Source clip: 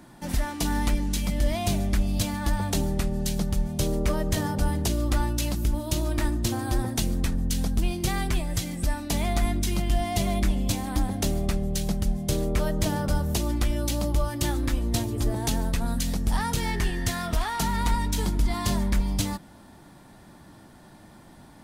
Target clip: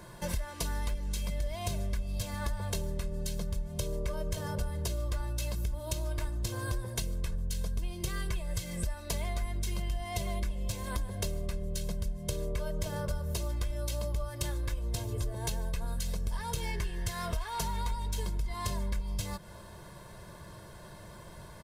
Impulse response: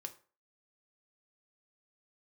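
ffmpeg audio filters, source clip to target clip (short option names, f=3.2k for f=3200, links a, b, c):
-af "aecho=1:1:1.9:0.96,acompressor=threshold=-31dB:ratio=6"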